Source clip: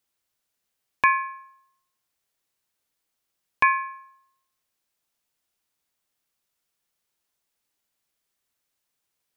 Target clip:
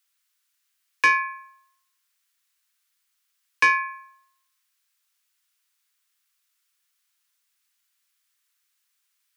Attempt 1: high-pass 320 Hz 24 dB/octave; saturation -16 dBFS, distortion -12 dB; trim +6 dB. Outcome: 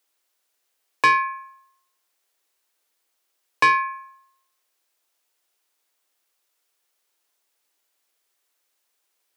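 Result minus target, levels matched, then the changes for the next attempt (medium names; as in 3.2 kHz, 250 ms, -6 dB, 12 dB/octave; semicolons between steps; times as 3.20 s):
250 Hz band +5.0 dB
change: high-pass 1.2 kHz 24 dB/octave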